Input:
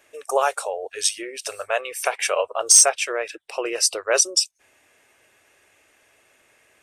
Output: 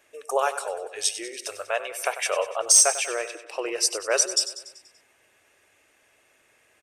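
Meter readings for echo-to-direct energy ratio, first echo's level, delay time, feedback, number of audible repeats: -11.5 dB, -13.0 dB, 96 ms, 56%, 5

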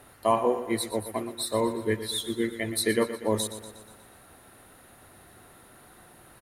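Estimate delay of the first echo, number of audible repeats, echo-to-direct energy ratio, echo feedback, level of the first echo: 0.12 s, 5, -11.0 dB, 57%, -12.5 dB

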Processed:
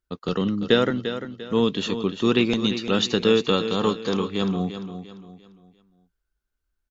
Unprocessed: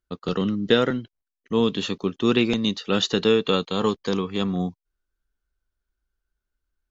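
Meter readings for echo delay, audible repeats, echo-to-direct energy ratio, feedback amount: 0.346 s, 3, -9.5 dB, 36%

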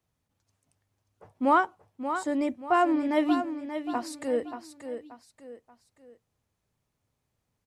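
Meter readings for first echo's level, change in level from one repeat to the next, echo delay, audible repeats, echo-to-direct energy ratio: -9.0 dB, -8.5 dB, 0.582 s, 3, -8.5 dB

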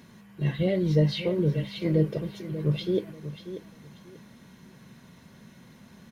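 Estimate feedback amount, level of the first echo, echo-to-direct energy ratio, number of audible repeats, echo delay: 23%, -12.0 dB, -12.0 dB, 2, 0.588 s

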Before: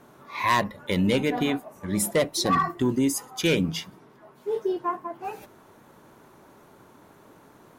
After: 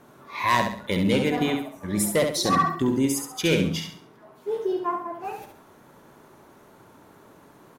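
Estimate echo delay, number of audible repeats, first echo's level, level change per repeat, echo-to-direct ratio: 68 ms, 4, -6.0 dB, -9.0 dB, -5.5 dB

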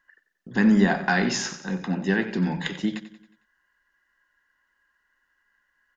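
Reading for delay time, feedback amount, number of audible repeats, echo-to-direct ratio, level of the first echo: 91 ms, 49%, 4, -13.0 dB, -14.0 dB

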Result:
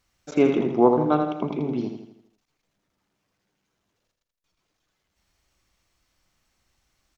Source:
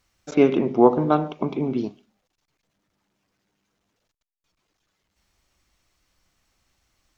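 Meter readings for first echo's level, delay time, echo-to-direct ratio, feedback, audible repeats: -7.0 dB, 82 ms, -6.0 dB, 47%, 5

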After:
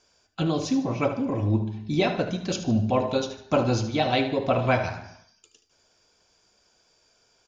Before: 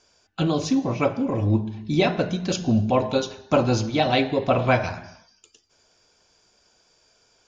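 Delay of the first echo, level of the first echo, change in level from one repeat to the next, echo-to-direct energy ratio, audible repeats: 75 ms, -12.0 dB, -7.5 dB, -11.5 dB, 2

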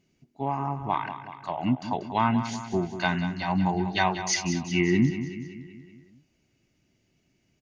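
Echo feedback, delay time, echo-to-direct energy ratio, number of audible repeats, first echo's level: 57%, 0.188 s, -9.5 dB, 5, -11.0 dB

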